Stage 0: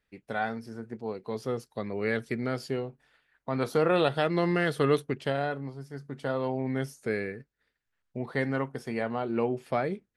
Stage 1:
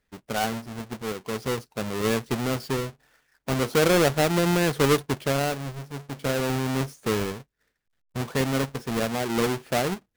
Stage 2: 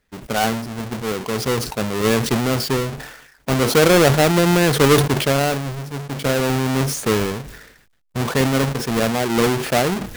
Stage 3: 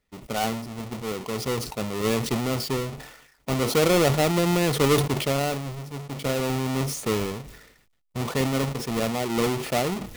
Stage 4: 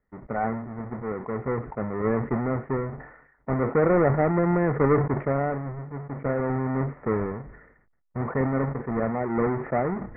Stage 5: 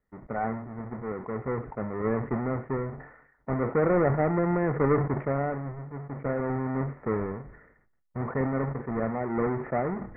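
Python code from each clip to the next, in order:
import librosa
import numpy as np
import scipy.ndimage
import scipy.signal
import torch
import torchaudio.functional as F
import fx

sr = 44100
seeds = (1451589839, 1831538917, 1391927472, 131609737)

y1 = fx.halfwave_hold(x, sr)
y2 = fx.sustainer(y1, sr, db_per_s=60.0)
y2 = F.gain(torch.from_numpy(y2), 6.5).numpy()
y3 = fx.notch(y2, sr, hz=1600.0, q=5.7)
y3 = F.gain(torch.from_numpy(y3), -6.5).numpy()
y4 = scipy.signal.sosfilt(scipy.signal.butter(12, 2000.0, 'lowpass', fs=sr, output='sos'), y3)
y5 = y4 + 10.0 ** (-18.0 / 20.0) * np.pad(y4, (int(72 * sr / 1000.0), 0))[:len(y4)]
y5 = F.gain(torch.from_numpy(y5), -3.0).numpy()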